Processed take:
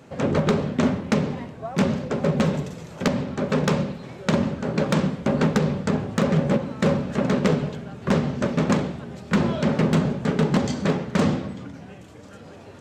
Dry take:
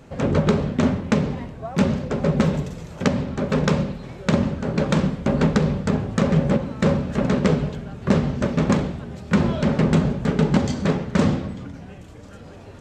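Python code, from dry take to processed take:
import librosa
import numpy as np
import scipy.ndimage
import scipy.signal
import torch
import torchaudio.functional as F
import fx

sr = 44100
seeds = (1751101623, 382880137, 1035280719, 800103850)

y = scipy.signal.sosfilt(scipy.signal.butter(2, 91.0, 'highpass', fs=sr, output='sos'), x)
y = 10.0 ** (-10.0 / 20.0) * (np.abs((y / 10.0 ** (-10.0 / 20.0) + 3.0) % 4.0 - 2.0) - 1.0)
y = fx.low_shelf(y, sr, hz=130.0, db=-4.5)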